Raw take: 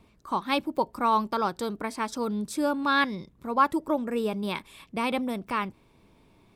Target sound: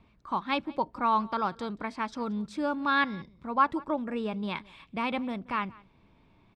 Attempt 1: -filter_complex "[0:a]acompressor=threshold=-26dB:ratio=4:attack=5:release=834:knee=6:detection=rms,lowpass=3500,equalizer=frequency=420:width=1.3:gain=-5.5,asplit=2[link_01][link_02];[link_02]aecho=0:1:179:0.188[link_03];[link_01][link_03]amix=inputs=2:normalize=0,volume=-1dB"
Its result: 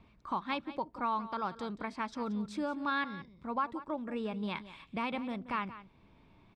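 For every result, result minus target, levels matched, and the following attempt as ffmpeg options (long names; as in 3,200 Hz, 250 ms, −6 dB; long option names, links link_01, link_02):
downward compressor: peak gain reduction +11 dB; echo-to-direct +8.5 dB
-filter_complex "[0:a]lowpass=3500,equalizer=frequency=420:width=1.3:gain=-5.5,asplit=2[link_01][link_02];[link_02]aecho=0:1:179:0.188[link_03];[link_01][link_03]amix=inputs=2:normalize=0,volume=-1dB"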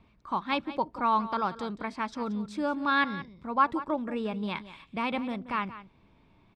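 echo-to-direct +8.5 dB
-filter_complex "[0:a]lowpass=3500,equalizer=frequency=420:width=1.3:gain=-5.5,asplit=2[link_01][link_02];[link_02]aecho=0:1:179:0.0708[link_03];[link_01][link_03]amix=inputs=2:normalize=0,volume=-1dB"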